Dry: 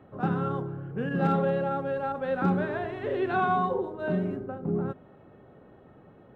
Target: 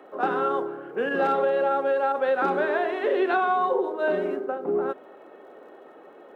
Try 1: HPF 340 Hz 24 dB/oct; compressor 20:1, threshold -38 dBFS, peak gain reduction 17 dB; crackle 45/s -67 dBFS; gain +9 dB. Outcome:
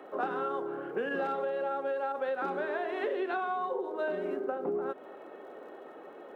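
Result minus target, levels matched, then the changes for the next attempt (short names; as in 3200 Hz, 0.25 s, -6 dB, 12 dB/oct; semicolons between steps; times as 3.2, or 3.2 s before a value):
compressor: peak gain reduction +10 dB
change: compressor 20:1, threshold -27.5 dBFS, peak gain reduction 7.5 dB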